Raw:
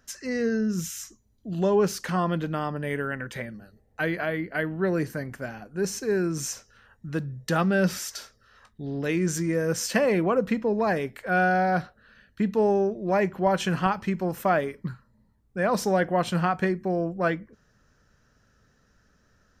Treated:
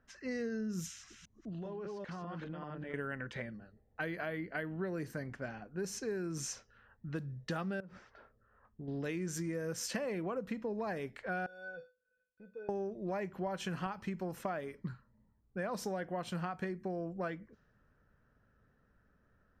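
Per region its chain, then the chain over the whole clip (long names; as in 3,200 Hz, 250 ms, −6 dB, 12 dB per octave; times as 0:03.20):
0:00.86–0:02.94: delay that plays each chunk backwards 198 ms, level −1 dB + high-shelf EQ 11,000 Hz −11 dB + downward compressor 16 to 1, threshold −32 dBFS
0:07.80–0:08.88: low-pass filter 1,200 Hz + downward compressor 12 to 1, threshold −34 dBFS
0:11.46–0:12.69: leveller curve on the samples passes 2 + tilt shelving filter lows +5 dB, about 870 Hz + tuned comb filter 500 Hz, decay 0.26 s, harmonics odd, mix 100%
whole clip: low-pass that shuts in the quiet parts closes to 1,800 Hz, open at −24 dBFS; downward compressor, threshold −28 dBFS; level −6.5 dB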